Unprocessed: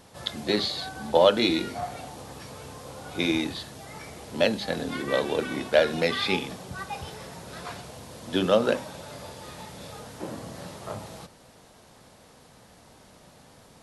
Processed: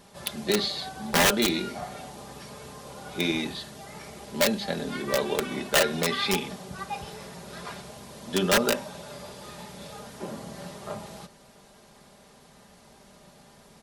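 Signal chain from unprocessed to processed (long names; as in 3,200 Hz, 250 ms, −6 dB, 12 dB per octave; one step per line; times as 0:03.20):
wrap-around overflow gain 13 dB
comb filter 5 ms, depth 54%
level −1.5 dB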